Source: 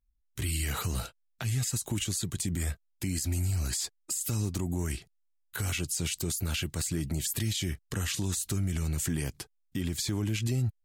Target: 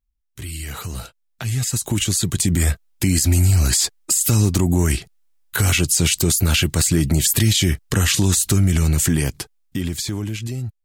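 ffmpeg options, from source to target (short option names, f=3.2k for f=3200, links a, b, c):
-af "dynaudnorm=f=520:g=7:m=14.5dB"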